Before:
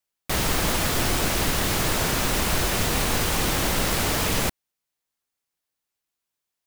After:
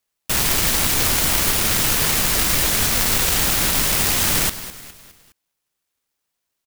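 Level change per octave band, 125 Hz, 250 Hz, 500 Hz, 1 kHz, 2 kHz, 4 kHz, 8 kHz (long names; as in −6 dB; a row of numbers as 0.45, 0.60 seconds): 0.0, −0.5, −1.5, +0.5, +3.5, +5.5, +8.0 decibels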